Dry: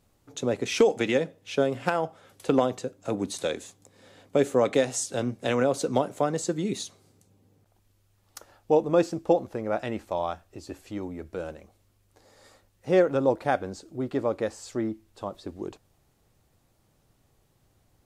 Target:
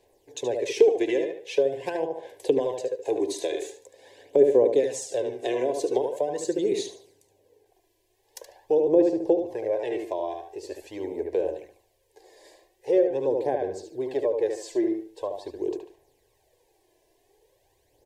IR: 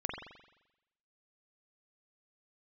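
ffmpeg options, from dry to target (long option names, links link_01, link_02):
-filter_complex "[0:a]asuperstop=centerf=1300:order=8:qfactor=2.6,asplit=2[link_01][link_02];[link_02]adelay=73,lowpass=frequency=4500:poles=1,volume=-5.5dB,asplit=2[link_03][link_04];[link_04]adelay=73,lowpass=frequency=4500:poles=1,volume=0.31,asplit=2[link_05][link_06];[link_06]adelay=73,lowpass=frequency=4500:poles=1,volume=0.31,asplit=2[link_07][link_08];[link_08]adelay=73,lowpass=frequency=4500:poles=1,volume=0.31[link_09];[link_03][link_05][link_07][link_09]amix=inputs=4:normalize=0[link_10];[link_01][link_10]amix=inputs=2:normalize=0,aphaser=in_gain=1:out_gain=1:delay=3:decay=0.48:speed=0.44:type=sinusoidal,acrossover=split=390[link_11][link_12];[link_12]acompressor=threshold=-32dB:ratio=6[link_13];[link_11][link_13]amix=inputs=2:normalize=0,lowshelf=frequency=290:width_type=q:width=3:gain=-11.5"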